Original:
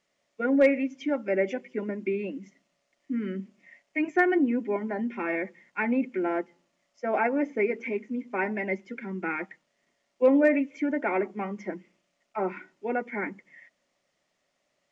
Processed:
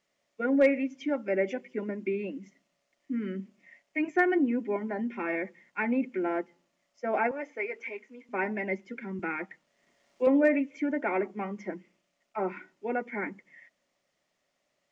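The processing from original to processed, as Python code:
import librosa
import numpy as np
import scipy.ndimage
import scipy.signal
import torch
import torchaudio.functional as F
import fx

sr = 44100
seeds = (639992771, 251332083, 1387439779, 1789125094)

y = fx.highpass(x, sr, hz=640.0, slope=12, at=(7.31, 8.29))
y = fx.band_squash(y, sr, depth_pct=40, at=(9.19, 10.27))
y = y * 10.0 ** (-2.0 / 20.0)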